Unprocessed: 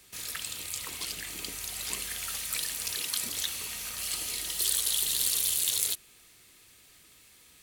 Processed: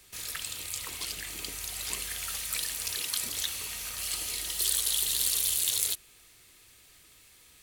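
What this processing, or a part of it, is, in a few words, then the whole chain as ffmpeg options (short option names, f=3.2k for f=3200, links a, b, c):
low shelf boost with a cut just above: -af "lowshelf=f=64:g=6,equalizer=f=210:t=o:w=0.88:g=-4"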